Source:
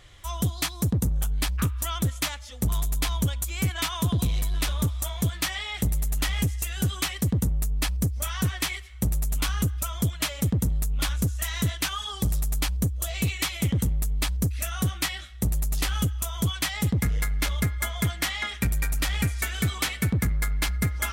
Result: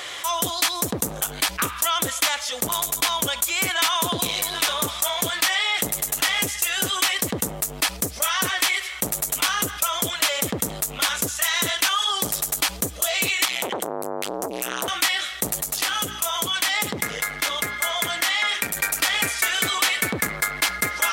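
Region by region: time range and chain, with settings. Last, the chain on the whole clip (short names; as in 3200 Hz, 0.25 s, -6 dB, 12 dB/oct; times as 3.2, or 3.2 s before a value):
13.45–14.88 compressor 3:1, threshold -30 dBFS + core saturation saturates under 1100 Hz
15.61–18.77 compressor 2:1, threshold -29 dBFS + de-hum 58.43 Hz, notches 7
whole clip: HPF 500 Hz 12 dB/oct; fast leveller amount 50%; gain +6 dB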